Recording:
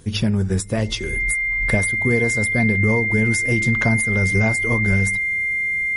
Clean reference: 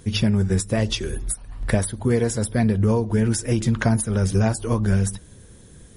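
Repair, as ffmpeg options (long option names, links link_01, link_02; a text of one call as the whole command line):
ffmpeg -i in.wav -af "bandreject=frequency=2100:width=30" out.wav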